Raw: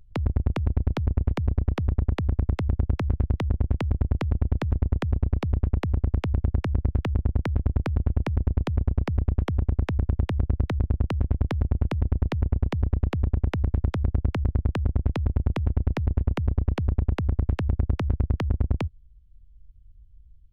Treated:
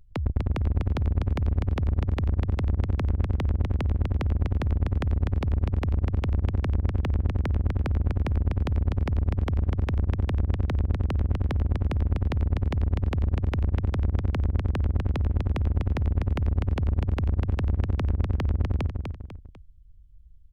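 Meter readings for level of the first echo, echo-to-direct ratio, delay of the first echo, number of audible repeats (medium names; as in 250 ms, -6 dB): -5.0 dB, -4.5 dB, 248 ms, 3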